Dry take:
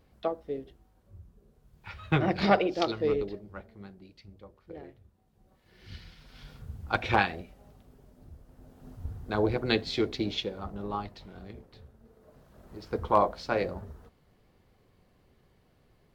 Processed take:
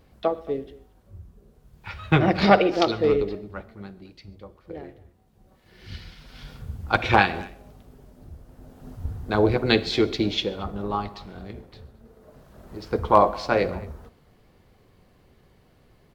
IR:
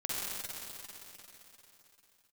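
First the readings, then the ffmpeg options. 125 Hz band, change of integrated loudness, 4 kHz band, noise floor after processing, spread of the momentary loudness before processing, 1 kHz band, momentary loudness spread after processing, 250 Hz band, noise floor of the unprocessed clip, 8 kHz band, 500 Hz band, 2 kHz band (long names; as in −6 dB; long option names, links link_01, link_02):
+7.0 dB, +7.0 dB, +7.0 dB, −59 dBFS, 23 LU, +7.0 dB, 22 LU, +7.0 dB, −66 dBFS, can't be measured, +7.0 dB, +7.0 dB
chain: -filter_complex "[0:a]asplit=2[link_01][link_02];[link_02]adelay=220,highpass=300,lowpass=3400,asoftclip=type=hard:threshold=-20dB,volume=-20dB[link_03];[link_01][link_03]amix=inputs=2:normalize=0,asplit=2[link_04][link_05];[1:a]atrim=start_sample=2205,afade=type=out:start_time=0.2:duration=0.01,atrim=end_sample=9261[link_06];[link_05][link_06]afir=irnorm=-1:irlink=0,volume=-17.5dB[link_07];[link_04][link_07]amix=inputs=2:normalize=0,volume=6dB"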